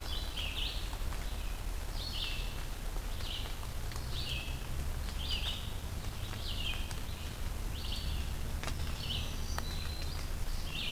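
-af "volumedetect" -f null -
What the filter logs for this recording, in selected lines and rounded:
mean_volume: -36.6 dB
max_volume: -17.5 dB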